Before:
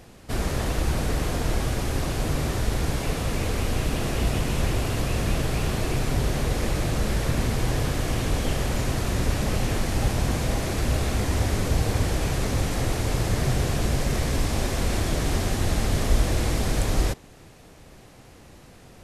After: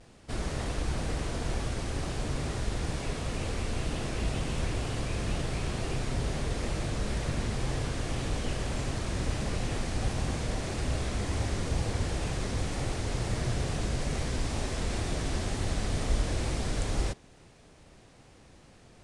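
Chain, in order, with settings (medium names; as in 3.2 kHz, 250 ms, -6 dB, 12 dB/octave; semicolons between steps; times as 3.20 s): wow and flutter 110 cents; elliptic low-pass 9.6 kHz, stop band 80 dB; trim -6 dB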